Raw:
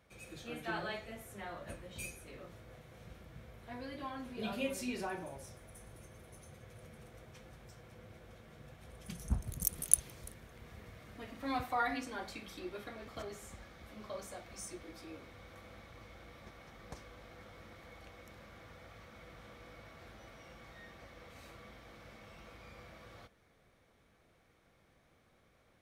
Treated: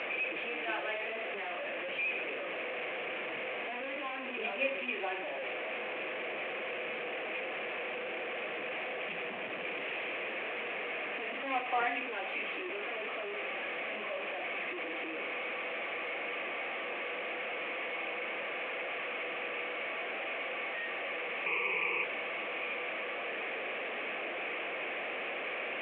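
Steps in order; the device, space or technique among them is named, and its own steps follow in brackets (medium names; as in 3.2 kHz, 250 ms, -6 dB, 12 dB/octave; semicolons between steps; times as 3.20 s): digital answering machine (band-pass 340–3100 Hz; one-bit delta coder 16 kbps, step -37 dBFS; cabinet simulation 370–4400 Hz, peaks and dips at 930 Hz -6 dB, 1.4 kHz -7 dB, 2.5 kHz +8 dB, 3.9 kHz -6 dB); 21.46–22.04 s: rippled EQ curve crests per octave 0.78, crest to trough 17 dB; trim +6 dB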